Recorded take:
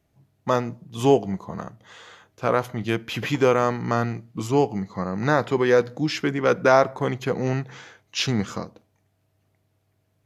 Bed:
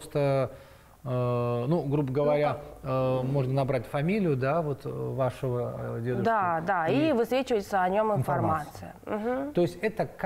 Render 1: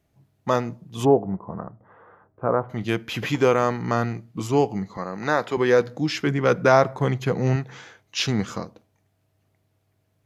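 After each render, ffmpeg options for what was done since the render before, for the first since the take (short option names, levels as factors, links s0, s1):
-filter_complex "[0:a]asplit=3[s0][s1][s2];[s0]afade=t=out:st=1.04:d=0.02[s3];[s1]lowpass=f=1300:w=0.5412,lowpass=f=1300:w=1.3066,afade=t=in:st=1.04:d=0.02,afade=t=out:st=2.69:d=0.02[s4];[s2]afade=t=in:st=2.69:d=0.02[s5];[s3][s4][s5]amix=inputs=3:normalize=0,asettb=1/sr,asplit=3[s6][s7][s8];[s6]atrim=end=4.974[s9];[s7]atrim=start=4.97:end=5.57,asetpts=PTS-STARTPTS,afade=t=in:d=0.004:c=qsin,afade=t=out:st=0.596:d=0.004:c=qsin,highpass=f=370:p=1[s10];[s8]atrim=start=5.566[s11];[s9][s10]acrossfade=d=0.004:c1=hsin:c2=qsin[s12];[s12][s11]acrossfade=d=0.004:c1=qsin:c2=hsin,asettb=1/sr,asplit=3[s13][s14][s15];[s13]atrim=end=6.264[s16];[s14]atrim=start=6.26:end=7.56,asetpts=PTS-STARTPTS,afade=t=in:d=0.004:c=qsin,afade=t=out:st=1.296:d=0.004:c=qsin,equalizer=f=140:t=o:w=0.66:g=6.5[s17];[s15]atrim=start=7.556[s18];[s16][s17]acrossfade=d=0.004:c1=hsin:c2=qsin[s19];[s19][s18]acrossfade=d=0.004:c1=qsin:c2=hsin"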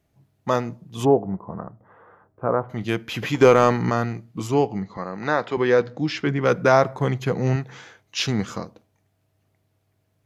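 -filter_complex "[0:a]asettb=1/sr,asplit=3[s0][s1][s2];[s0]atrim=end=3.414[s3];[s1]atrim=start=3.41:end=3.9,asetpts=PTS-STARTPTS,afade=t=in:d=0.004:c=qsin,afade=t=out:st=0.486:d=0.004:c=qsin,acontrast=46[s4];[s2]atrim=start=3.896[s5];[s3][s4]acrossfade=d=0.004:c1=hsin:c2=qsin[s6];[s6][s5]acrossfade=d=0.004:c1=qsin:c2=hsin,asettb=1/sr,asplit=3[s7][s8][s9];[s7]atrim=end=4.544[s10];[s8]atrim=start=4.54:end=6.42,asetpts=PTS-STARTPTS,afade=t=in:d=0.004:c=qsin,afade=t=out:st=1.876:d=0.004:c=qsin,lowpass=5000[s11];[s9]atrim=start=6.416[s12];[s10][s11]acrossfade=d=0.004:c1=hsin:c2=qsin[s13];[s13][s12]acrossfade=d=0.004:c1=qsin:c2=hsin"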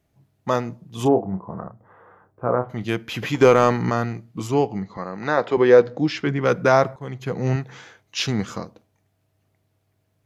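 -filter_complex "[0:a]asettb=1/sr,asplit=3[s0][s1][s2];[s0]atrim=end=1.024[s3];[s1]atrim=start=1.02:end=2.71,asetpts=PTS-STARTPTS,afade=t=in:d=0.004:c=qsin,afade=t=out:st=1.686:d=0.004:c=qsin,asplit=2[s4][s5];[s5]adelay=32,volume=0.398[s6];[s4][s6]amix=inputs=2:normalize=0,atrim=end_sample=74529[s7];[s2]atrim=start=2.706[s8];[s3][s7]acrossfade=d=0.004:c1=hsin:c2=qsin[s9];[s9][s8]acrossfade=d=0.004:c1=qsin:c2=hsin,asettb=1/sr,asplit=3[s10][s11][s12];[s10]atrim=end=5.374[s13];[s11]atrim=start=5.37:end=6.08,asetpts=PTS-STARTPTS,afade=t=in:d=0.004:c=qsin,afade=t=out:st=0.706:d=0.004:c=qsin,equalizer=f=490:t=o:w=1.7:g=6[s14];[s12]atrim=start=6.076[s15];[s13][s14]acrossfade=d=0.004:c1=hsin:c2=qsin[s16];[s16][s15]acrossfade=d=0.004:c1=qsin:c2=hsin,asplit=2[s17][s18];[s17]atrim=end=6.96,asetpts=PTS-STARTPTS,afade=t=out:st=6.956:d=0.004:c=hsin:silence=0.141254[s19];[s18]atrim=start=6.96,asetpts=PTS-STARTPTS,afade=t=in:d=0.56:silence=0.141254[s20];[s19][s20]concat=n=2:v=0:a=1"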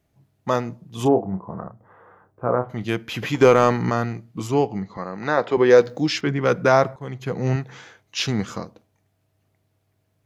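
-filter_complex "[0:a]asettb=1/sr,asplit=3[s0][s1][s2];[s0]atrim=end=5.704[s3];[s1]atrim=start=5.7:end=6.21,asetpts=PTS-STARTPTS,afade=t=in:d=0.004:c=qsin,afade=t=out:st=0.506:d=0.004:c=qsin,aemphasis=mode=production:type=75fm[s4];[s2]atrim=start=6.206[s5];[s3][s4]acrossfade=d=0.004:c1=hsin:c2=qsin[s6];[s6][s5]acrossfade=d=0.004:c1=qsin:c2=hsin"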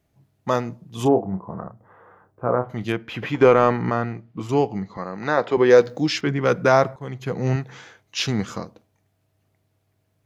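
-filter_complex "[0:a]asettb=1/sr,asplit=3[s0][s1][s2];[s0]atrim=end=2.924[s3];[s1]atrim=start=2.92:end=4.49,asetpts=PTS-STARTPTS,afade=t=in:d=0.004:c=qsin,afade=t=out:st=1.566:d=0.004:c=qsin,bass=f=250:g=-2,treble=f=4000:g=-14[s4];[s2]atrim=start=4.486[s5];[s3][s4]acrossfade=d=0.004:c1=hsin:c2=qsin[s6];[s6][s5]acrossfade=d=0.004:c1=qsin:c2=hsin"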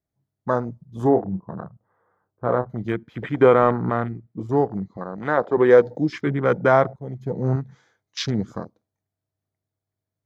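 -af "afwtdn=0.0355,equalizer=f=2700:t=o:w=0.28:g=-12.5"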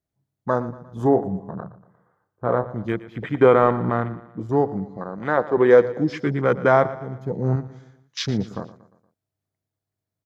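-af "aecho=1:1:117|234|351|468:0.15|0.0718|0.0345|0.0165"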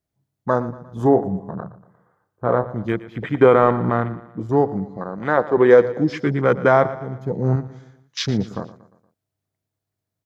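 -af "volume=1.33,alimiter=limit=0.794:level=0:latency=1"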